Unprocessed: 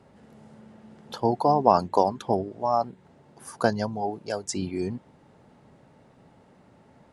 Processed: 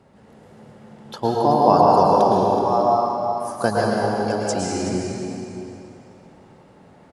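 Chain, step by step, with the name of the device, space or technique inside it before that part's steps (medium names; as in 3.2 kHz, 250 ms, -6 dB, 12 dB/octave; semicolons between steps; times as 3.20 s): cave (delay 376 ms -11.5 dB; reverberation RT60 2.9 s, pre-delay 102 ms, DRR -4 dB); trim +1.5 dB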